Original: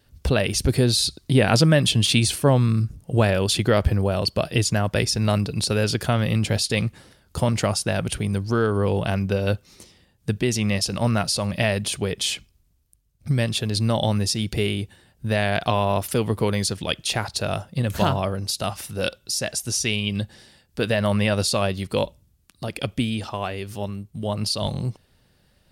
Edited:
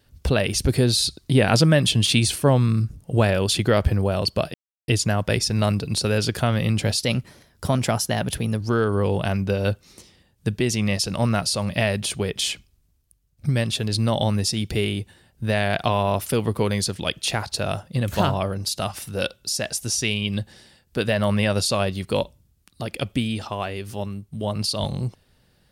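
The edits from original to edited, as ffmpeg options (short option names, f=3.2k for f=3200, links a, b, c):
-filter_complex "[0:a]asplit=4[a][b][c][d];[a]atrim=end=4.54,asetpts=PTS-STARTPTS,afade=t=out:st=4.536:d=0.004:c=hsin,apad=pad_dur=0.34[e];[b]atrim=start=4.54:end=6.654,asetpts=PTS-STARTPTS,afade=t=in:d=0.004:c=hsin[f];[c]atrim=start=6.65:end=8.42,asetpts=PTS-STARTPTS,asetrate=48510,aresample=44100[g];[d]atrim=start=8.416[h];[e][f]concat=n=2:v=0:a=1[i];[i][g]acrossfade=d=0.004:c1=hsin:c2=hsin[j];[j][h]acrossfade=d=0.004:c1=hsin:c2=hsin"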